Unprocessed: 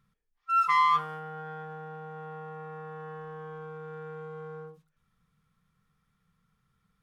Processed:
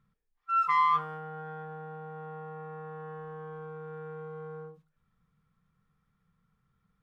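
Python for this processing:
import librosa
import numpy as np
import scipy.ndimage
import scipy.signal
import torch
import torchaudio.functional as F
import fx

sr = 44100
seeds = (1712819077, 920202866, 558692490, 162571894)

y = fx.high_shelf(x, sr, hz=2800.0, db=-11.0)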